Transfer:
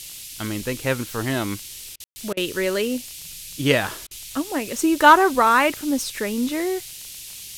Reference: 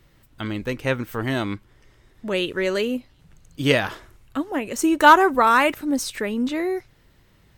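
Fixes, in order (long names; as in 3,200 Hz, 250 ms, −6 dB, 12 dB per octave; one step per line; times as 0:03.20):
click removal
ambience match 0:02.04–0:02.16
repair the gap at 0:01.96/0:02.33/0:04.07, 39 ms
noise reduction from a noise print 18 dB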